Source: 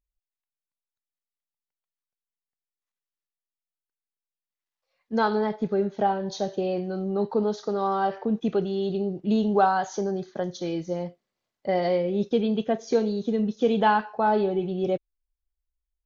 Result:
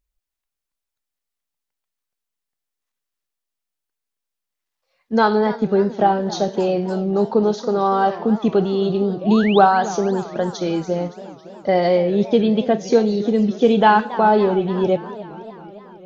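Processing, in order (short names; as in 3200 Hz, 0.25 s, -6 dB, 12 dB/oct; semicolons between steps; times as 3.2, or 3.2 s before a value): painted sound rise, 9.21–9.59, 500–4000 Hz -36 dBFS; warbling echo 0.277 s, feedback 68%, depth 209 cents, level -16.5 dB; gain +7.5 dB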